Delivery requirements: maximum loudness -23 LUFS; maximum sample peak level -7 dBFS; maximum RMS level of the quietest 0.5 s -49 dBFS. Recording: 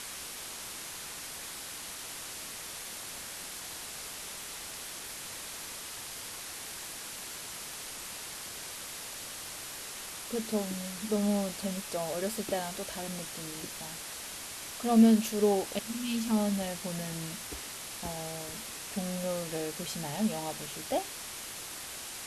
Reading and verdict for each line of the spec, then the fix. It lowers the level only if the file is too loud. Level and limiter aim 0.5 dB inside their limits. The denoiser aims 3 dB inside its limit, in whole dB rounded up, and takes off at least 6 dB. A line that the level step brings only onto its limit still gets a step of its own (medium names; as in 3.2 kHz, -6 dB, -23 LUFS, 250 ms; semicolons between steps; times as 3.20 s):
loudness -34.5 LUFS: pass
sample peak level -12.0 dBFS: pass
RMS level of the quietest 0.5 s -42 dBFS: fail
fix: noise reduction 10 dB, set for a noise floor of -42 dBFS